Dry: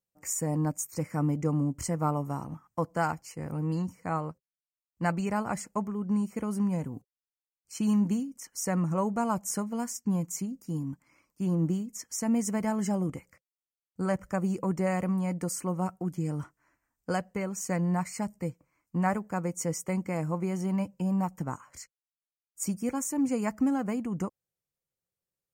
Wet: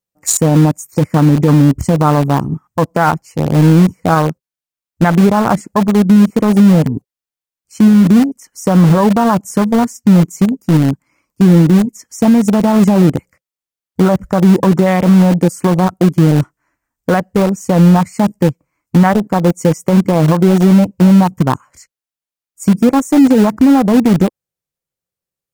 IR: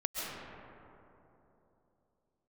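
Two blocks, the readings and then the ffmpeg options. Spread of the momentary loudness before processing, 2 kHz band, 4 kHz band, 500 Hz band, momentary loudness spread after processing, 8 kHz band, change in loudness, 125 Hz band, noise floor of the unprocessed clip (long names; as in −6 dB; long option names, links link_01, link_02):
9 LU, +16.5 dB, +19.5 dB, +19.0 dB, 8 LU, +11.5 dB, +19.5 dB, +20.5 dB, below −85 dBFS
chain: -filter_complex "[0:a]afwtdn=0.0158,asplit=2[link_01][link_02];[link_02]acrusher=bits=4:mix=0:aa=0.000001,volume=-11dB[link_03];[link_01][link_03]amix=inputs=2:normalize=0,alimiter=level_in=22dB:limit=-1dB:release=50:level=0:latency=1,volume=-1dB"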